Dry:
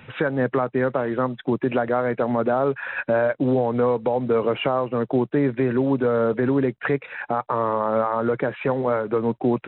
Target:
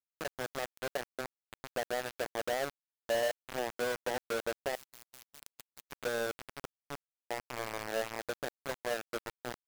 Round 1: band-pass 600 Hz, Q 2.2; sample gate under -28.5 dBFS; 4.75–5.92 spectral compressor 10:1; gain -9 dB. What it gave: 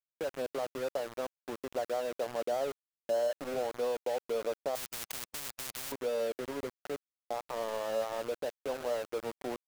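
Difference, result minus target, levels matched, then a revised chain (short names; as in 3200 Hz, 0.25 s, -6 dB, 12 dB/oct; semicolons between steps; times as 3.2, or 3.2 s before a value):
sample gate: distortion -11 dB
band-pass 600 Hz, Q 2.2; sample gate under -20.5 dBFS; 4.75–5.92 spectral compressor 10:1; gain -9 dB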